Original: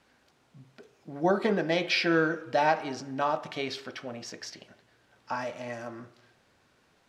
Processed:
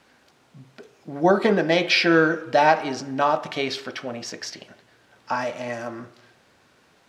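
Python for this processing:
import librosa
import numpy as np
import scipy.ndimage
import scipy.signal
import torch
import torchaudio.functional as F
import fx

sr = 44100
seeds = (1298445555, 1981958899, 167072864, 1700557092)

y = fx.low_shelf(x, sr, hz=70.0, db=-8.5)
y = F.gain(torch.from_numpy(y), 7.5).numpy()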